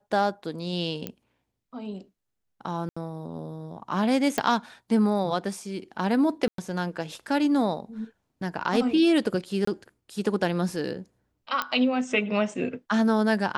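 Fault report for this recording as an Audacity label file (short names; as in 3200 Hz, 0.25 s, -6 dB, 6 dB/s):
1.070000	1.070000	pop -16 dBFS
2.890000	2.960000	gap 75 ms
4.380000	4.380000	pop -10 dBFS
6.480000	6.580000	gap 0.103 s
9.650000	9.670000	gap 24 ms
11.620000	11.620000	pop -12 dBFS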